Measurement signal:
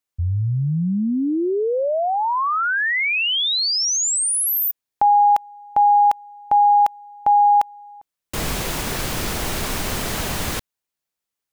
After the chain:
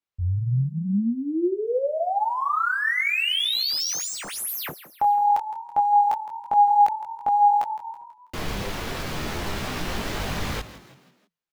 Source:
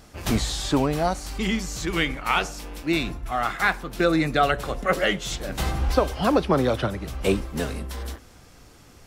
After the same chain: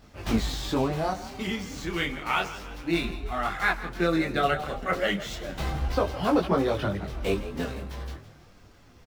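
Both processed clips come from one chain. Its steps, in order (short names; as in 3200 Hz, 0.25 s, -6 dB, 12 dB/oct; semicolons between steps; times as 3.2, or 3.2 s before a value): median filter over 5 samples; frequency-shifting echo 0.163 s, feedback 46%, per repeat +41 Hz, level -14.5 dB; detuned doubles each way 10 cents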